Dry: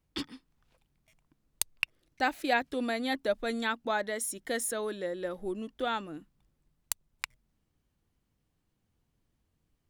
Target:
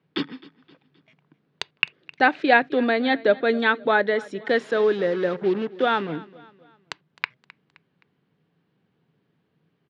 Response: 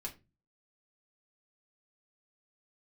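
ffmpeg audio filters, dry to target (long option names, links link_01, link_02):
-filter_complex "[0:a]asettb=1/sr,asplit=3[link_01][link_02][link_03];[link_01]atrim=end=4.414[link_04];[link_02]atrim=start=4.41:end=6.16,asetpts=PTS-STARTPTS,afade=type=in:duration=0.004:curve=qsin,afade=type=out:start_time=1.746:duration=0.004:curve=qsin,acrusher=bits=6:mix=0:aa=0.5[link_05];[link_03]atrim=start=6.156[link_06];[link_04][link_05]acrossfade=duration=0.004:curve1=hsin:curve2=qsin[link_07];[link_07][link_06]acrossfade=duration=0.004:curve1=qsin:curve2=hsin,highpass=frequency=130:width=0.5412,highpass=frequency=130:width=1.3066,equalizer=frequency=160:width_type=q:width=4:gain=7,equalizer=frequency=420:width_type=q:width=4:gain=7,equalizer=frequency=1600:width_type=q:width=4:gain=4,lowpass=frequency=3900:width=0.5412,lowpass=frequency=3900:width=1.3066,aecho=1:1:261|522|783:0.0891|0.0392|0.0173,asplit=2[link_08][link_09];[1:a]atrim=start_sample=2205,atrim=end_sample=3969,lowpass=3800[link_10];[link_09][link_10]afir=irnorm=-1:irlink=0,volume=-16.5dB[link_11];[link_08][link_11]amix=inputs=2:normalize=0,volume=8.5dB"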